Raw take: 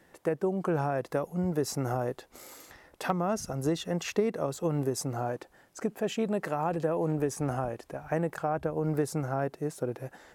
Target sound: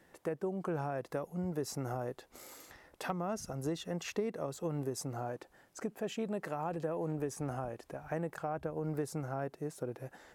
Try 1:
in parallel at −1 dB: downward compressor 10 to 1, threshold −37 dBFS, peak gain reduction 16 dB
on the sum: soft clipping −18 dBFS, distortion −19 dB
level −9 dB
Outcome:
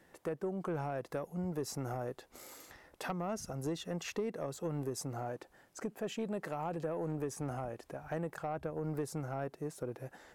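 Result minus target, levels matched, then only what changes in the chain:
soft clipping: distortion +17 dB
change: soft clipping −8 dBFS, distortion −36 dB

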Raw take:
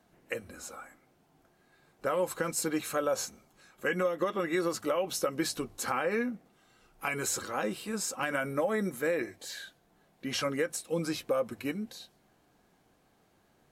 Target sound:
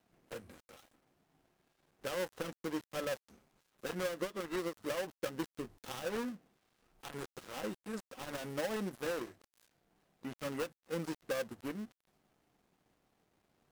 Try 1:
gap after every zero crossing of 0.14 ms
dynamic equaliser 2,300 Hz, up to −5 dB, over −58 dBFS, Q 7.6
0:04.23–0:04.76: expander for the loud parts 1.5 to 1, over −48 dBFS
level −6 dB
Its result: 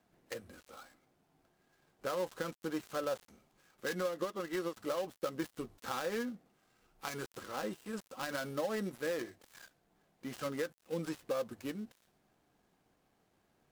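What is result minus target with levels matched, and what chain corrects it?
gap after every zero crossing: distortion −6 dB
gap after every zero crossing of 0.32 ms
dynamic equaliser 2,300 Hz, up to −5 dB, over −58 dBFS, Q 7.6
0:04.23–0:04.76: expander for the loud parts 1.5 to 1, over −48 dBFS
level −6 dB

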